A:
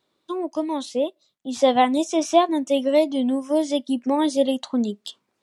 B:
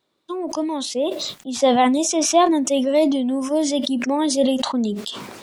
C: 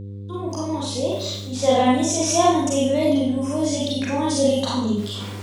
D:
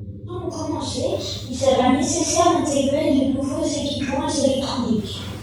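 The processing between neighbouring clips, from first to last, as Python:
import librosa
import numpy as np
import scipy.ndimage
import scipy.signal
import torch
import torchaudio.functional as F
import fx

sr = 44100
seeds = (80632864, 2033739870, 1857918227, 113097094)

y1 = fx.sustainer(x, sr, db_per_s=36.0)
y2 = fx.rev_schroeder(y1, sr, rt60_s=0.61, comb_ms=32, drr_db=-5.5)
y2 = fx.dmg_buzz(y2, sr, base_hz=100.0, harmonics=5, level_db=-26.0, tilt_db=-8, odd_only=False)
y2 = F.gain(torch.from_numpy(y2), -7.5).numpy()
y3 = fx.phase_scramble(y2, sr, seeds[0], window_ms=50)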